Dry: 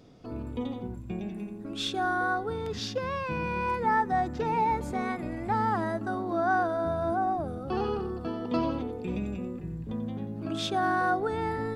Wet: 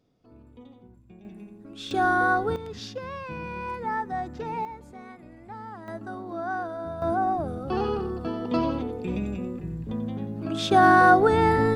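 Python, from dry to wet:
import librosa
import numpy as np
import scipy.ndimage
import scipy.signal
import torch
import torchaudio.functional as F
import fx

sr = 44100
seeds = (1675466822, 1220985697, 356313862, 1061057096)

y = fx.gain(x, sr, db=fx.steps((0.0, -15.0), (1.25, -6.5), (1.91, 6.0), (2.56, -4.0), (4.65, -13.0), (5.88, -5.0), (7.02, 3.0), (10.71, 10.5)))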